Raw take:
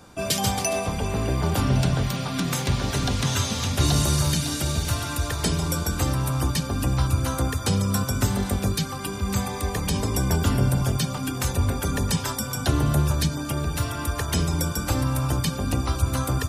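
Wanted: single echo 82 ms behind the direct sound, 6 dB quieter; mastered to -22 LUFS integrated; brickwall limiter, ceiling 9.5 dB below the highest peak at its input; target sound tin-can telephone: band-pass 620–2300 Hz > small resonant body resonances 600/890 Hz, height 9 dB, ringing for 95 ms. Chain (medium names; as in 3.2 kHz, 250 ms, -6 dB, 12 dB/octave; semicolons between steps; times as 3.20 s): peak limiter -18.5 dBFS; band-pass 620–2300 Hz; delay 82 ms -6 dB; small resonant body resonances 600/890 Hz, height 9 dB, ringing for 95 ms; trim +13 dB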